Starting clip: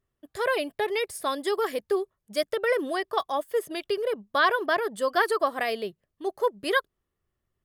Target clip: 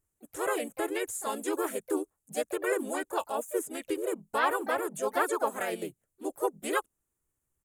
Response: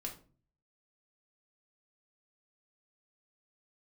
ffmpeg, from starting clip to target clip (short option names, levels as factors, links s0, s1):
-filter_complex "[0:a]acrossover=split=5000[s0][s1];[s1]acompressor=threshold=0.00447:ratio=4:attack=1:release=60[s2];[s0][s2]amix=inputs=2:normalize=0,highshelf=f=7100:t=q:w=3:g=11,asplit=4[s3][s4][s5][s6];[s4]asetrate=33038,aresample=44100,atempo=1.33484,volume=0.251[s7];[s5]asetrate=35002,aresample=44100,atempo=1.25992,volume=0.891[s8];[s6]asetrate=55563,aresample=44100,atempo=0.793701,volume=0.316[s9];[s3][s7][s8][s9]amix=inputs=4:normalize=0,volume=0.422"